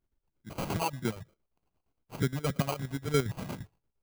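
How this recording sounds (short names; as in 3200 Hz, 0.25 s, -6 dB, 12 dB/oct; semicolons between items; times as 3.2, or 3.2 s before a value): chopped level 8.6 Hz, depth 65%, duty 55%; phasing stages 12, 3.2 Hz, lowest notch 210–3300 Hz; aliases and images of a low sample rate 1800 Hz, jitter 0%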